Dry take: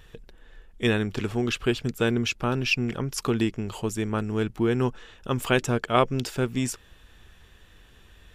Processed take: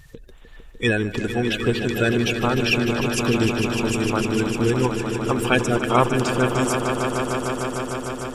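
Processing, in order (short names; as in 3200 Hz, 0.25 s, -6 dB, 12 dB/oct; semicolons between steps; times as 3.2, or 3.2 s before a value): bin magnitudes rounded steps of 30 dB; on a send: swelling echo 0.151 s, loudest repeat 5, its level -10 dB; on the sum: gain +3.5 dB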